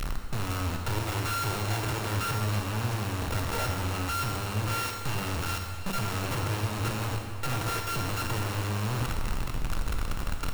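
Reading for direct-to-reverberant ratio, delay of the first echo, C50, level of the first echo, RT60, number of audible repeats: 2.0 dB, no echo, 3.5 dB, no echo, 2.3 s, no echo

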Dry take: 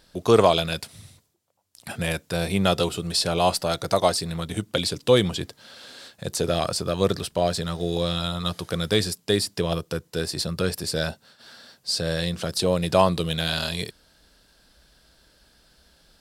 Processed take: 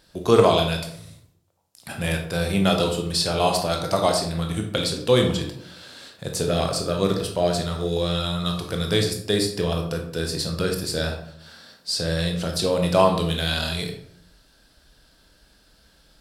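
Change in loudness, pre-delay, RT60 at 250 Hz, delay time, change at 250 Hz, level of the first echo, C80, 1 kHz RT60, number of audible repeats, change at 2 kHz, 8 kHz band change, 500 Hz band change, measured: +1.0 dB, 17 ms, 0.85 s, no echo, +2.0 dB, no echo, 10.0 dB, 0.60 s, no echo, +1.0 dB, +0.5 dB, +1.0 dB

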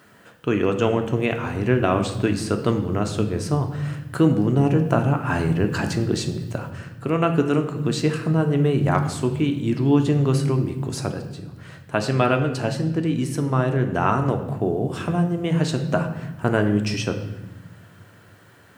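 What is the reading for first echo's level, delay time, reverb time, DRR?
no echo, no echo, 0.95 s, 5.0 dB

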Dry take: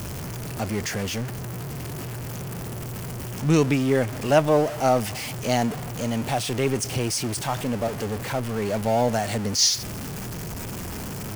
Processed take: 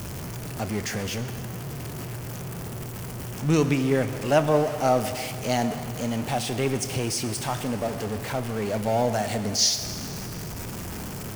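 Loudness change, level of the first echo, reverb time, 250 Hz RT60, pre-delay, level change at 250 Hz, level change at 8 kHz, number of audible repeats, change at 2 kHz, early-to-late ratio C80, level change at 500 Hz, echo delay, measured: -1.5 dB, no echo, 2.6 s, 2.6 s, 23 ms, -1.5 dB, -1.5 dB, no echo, -1.5 dB, 11.0 dB, -1.5 dB, no echo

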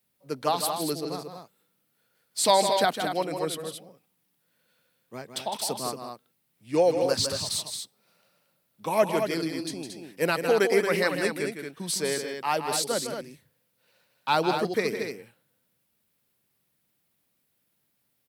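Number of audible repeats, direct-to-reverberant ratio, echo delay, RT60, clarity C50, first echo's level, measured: 2, no reverb, 158 ms, no reverb, no reverb, -8.0 dB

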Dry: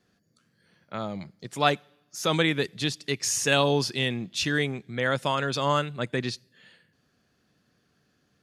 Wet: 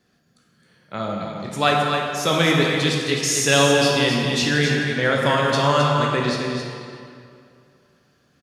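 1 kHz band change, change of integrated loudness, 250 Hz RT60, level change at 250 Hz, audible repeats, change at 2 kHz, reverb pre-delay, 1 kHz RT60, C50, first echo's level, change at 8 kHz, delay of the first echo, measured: +7.5 dB, +7.0 dB, 2.4 s, +8.0 dB, 1, +7.5 dB, 13 ms, 2.4 s, -0.5 dB, -7.0 dB, +6.5 dB, 264 ms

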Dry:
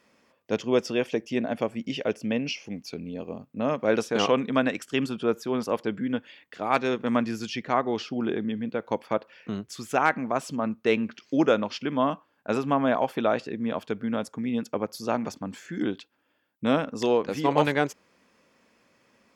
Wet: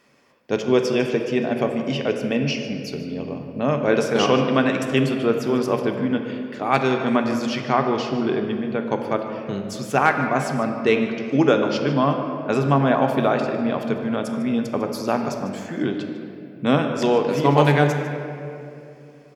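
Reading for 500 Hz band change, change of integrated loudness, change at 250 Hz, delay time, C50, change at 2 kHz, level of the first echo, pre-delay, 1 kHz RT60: +6.0 dB, +6.0 dB, +6.0 dB, 150 ms, 5.5 dB, +5.5 dB, -16.0 dB, 3 ms, 2.3 s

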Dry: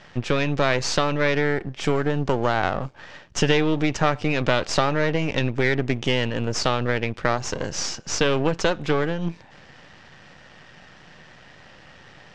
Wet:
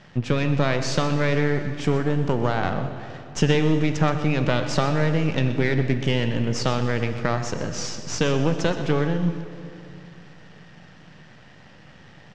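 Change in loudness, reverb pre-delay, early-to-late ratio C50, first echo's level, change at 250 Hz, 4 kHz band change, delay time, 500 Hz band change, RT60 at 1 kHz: 0.0 dB, 26 ms, 8.0 dB, -13.5 dB, +2.0 dB, -3.5 dB, 125 ms, -1.5 dB, 2.6 s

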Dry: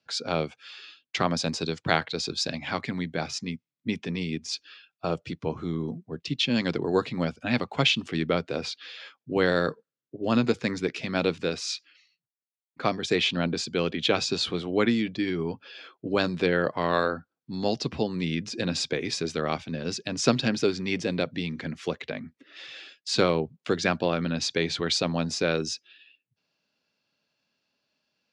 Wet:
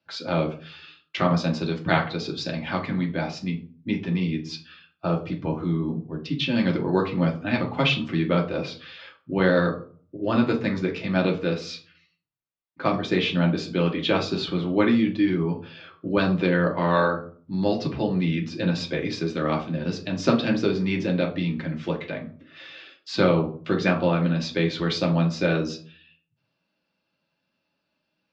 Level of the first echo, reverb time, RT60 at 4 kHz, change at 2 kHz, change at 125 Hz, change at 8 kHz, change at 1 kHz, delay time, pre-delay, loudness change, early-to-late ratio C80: no echo, 0.45 s, 0.30 s, +1.5 dB, +7.0 dB, no reading, +2.5 dB, no echo, 3 ms, +3.0 dB, 16.5 dB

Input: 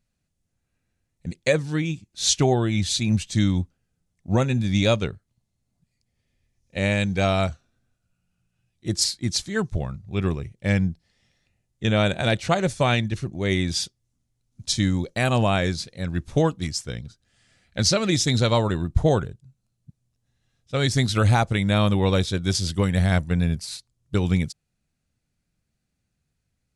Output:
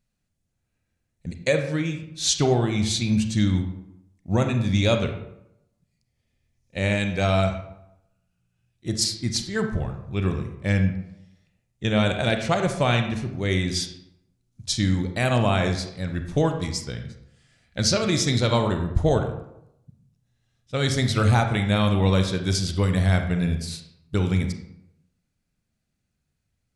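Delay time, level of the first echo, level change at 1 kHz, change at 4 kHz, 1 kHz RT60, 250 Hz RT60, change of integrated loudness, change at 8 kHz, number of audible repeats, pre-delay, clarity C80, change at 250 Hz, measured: no echo, no echo, -0.5 dB, -1.0 dB, 0.80 s, 0.80 s, -0.5 dB, -1.5 dB, no echo, 31 ms, 10.0 dB, 0.0 dB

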